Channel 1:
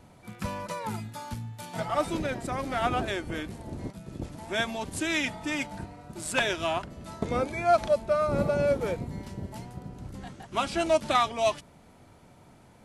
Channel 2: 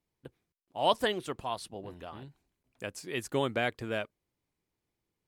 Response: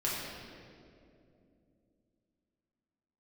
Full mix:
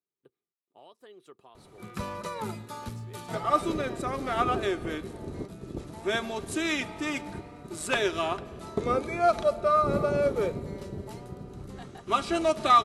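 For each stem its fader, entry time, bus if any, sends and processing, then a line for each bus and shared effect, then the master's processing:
-2.5 dB, 1.55 s, send -21.5 dB, dry
-15.5 dB, 0.00 s, no send, HPF 150 Hz; compressor 12:1, threshold -35 dBFS, peak gain reduction 16 dB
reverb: on, RT60 2.6 s, pre-delay 4 ms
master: small resonant body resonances 400/1200/3900 Hz, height 11 dB, ringing for 45 ms

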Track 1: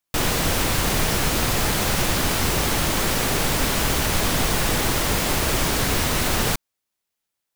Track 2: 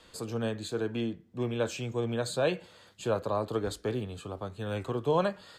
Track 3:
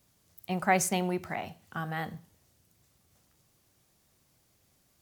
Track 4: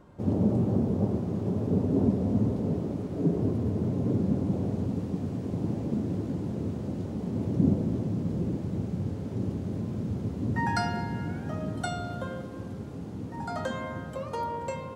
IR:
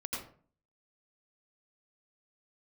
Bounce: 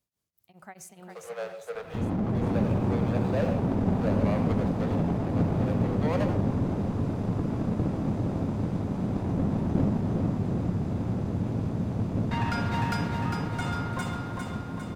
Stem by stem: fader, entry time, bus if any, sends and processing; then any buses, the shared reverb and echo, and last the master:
off
+2.0 dB, 0.95 s, bus A, send -7 dB, no echo send, median filter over 41 samples; steep high-pass 480 Hz 72 dB/oct
-15.5 dB, 0.00 s, no bus, send -23 dB, echo send -4.5 dB, beating tremolo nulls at 4.7 Hz
+1.0 dB, 1.75 s, bus A, send -18 dB, echo send -3.5 dB, minimum comb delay 0.81 ms
bus A: 0.0 dB, high shelf 7200 Hz -12 dB; limiter -22 dBFS, peak gain reduction 10.5 dB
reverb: on, RT60 0.45 s, pre-delay 79 ms
echo: feedback echo 0.403 s, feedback 55%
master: dry

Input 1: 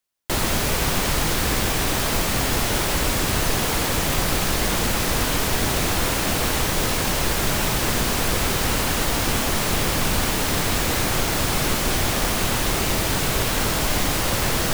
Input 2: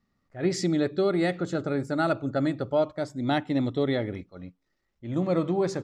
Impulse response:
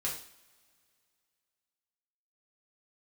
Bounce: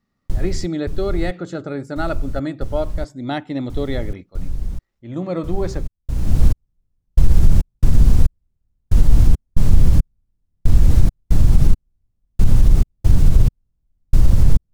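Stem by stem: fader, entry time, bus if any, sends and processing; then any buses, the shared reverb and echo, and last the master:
-12.0 dB, 0.00 s, no send, tilt -4.5 dB/oct; step gate ".xx.xx.." 69 bpm -60 dB; tone controls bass +11 dB, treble +14 dB; auto duck -16 dB, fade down 0.55 s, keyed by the second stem
+1.0 dB, 0.00 s, no send, dry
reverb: off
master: limiter -2 dBFS, peak gain reduction 7 dB

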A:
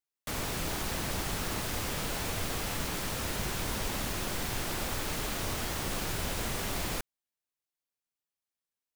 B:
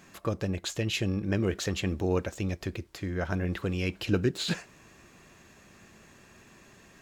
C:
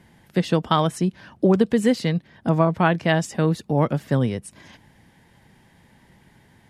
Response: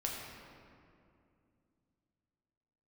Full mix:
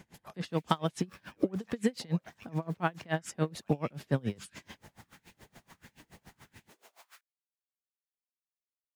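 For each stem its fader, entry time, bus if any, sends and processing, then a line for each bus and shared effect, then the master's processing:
-15.0 dB, 0.20 s, bus A, no send, auto duck -8 dB, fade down 1.45 s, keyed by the third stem
-3.0 dB, 0.00 s, bus A, no send, spectral gate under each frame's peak -10 dB weak
+1.0 dB, 0.00 s, no bus, no send, compressor 4:1, threshold -23 dBFS, peak gain reduction 10 dB
bus A: 0.0 dB, LFO high-pass saw up 1.5 Hz 260–2700 Hz; limiter -36.5 dBFS, peak gain reduction 15 dB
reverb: off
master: dB-linear tremolo 7 Hz, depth 29 dB

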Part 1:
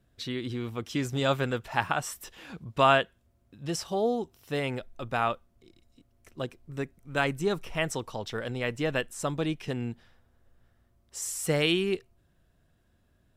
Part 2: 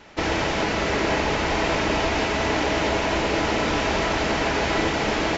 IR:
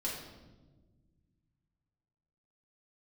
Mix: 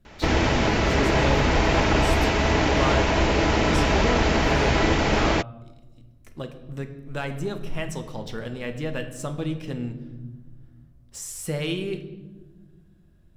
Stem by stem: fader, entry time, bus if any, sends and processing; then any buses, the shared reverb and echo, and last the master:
-1.0 dB, 0.00 s, send -5.5 dB, sample leveller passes 1; compressor 1.5:1, threshold -48 dBFS, peak gain reduction 12 dB
0.0 dB, 0.05 s, no send, dry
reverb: on, RT60 1.3 s, pre-delay 4 ms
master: low shelf 140 Hz +10.5 dB

